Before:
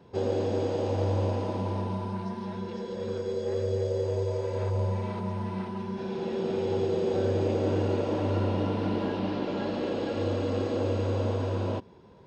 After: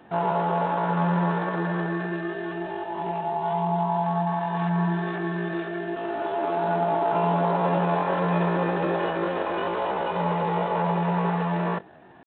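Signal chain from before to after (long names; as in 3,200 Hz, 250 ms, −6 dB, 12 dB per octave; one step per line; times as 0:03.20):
pitch shifter +10 semitones
level +4 dB
G.726 32 kbit/s 8,000 Hz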